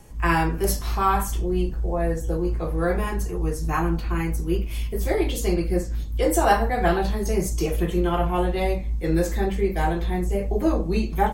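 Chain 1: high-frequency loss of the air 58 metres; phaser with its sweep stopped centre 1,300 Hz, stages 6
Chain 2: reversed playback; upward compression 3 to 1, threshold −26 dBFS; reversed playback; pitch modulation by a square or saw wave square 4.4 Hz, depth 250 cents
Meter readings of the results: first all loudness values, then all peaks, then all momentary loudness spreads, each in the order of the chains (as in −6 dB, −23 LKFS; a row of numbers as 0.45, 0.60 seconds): −27.5, −24.0 LKFS; −8.5, −4.5 dBFS; 5, 5 LU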